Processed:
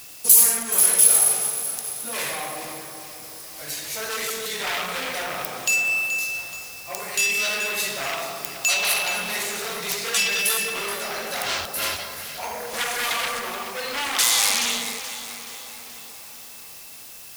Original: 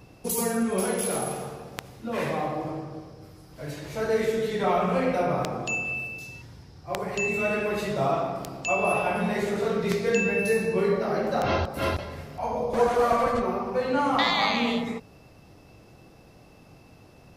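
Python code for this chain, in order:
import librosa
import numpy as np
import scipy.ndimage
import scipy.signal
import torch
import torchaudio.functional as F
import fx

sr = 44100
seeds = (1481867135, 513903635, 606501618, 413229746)

p1 = fx.fold_sine(x, sr, drive_db=15, ceiling_db=-7.0)
p2 = fx.dmg_noise_colour(p1, sr, seeds[0], colour='pink', level_db=-38.0)
p3 = librosa.effects.preemphasis(p2, coef=0.97, zi=[0.0])
p4 = p3 + fx.echo_split(p3, sr, split_hz=1500.0, low_ms=573, high_ms=427, feedback_pct=52, wet_db=-12.0, dry=0)
y = p4 * 10.0 ** (-1.0 / 20.0)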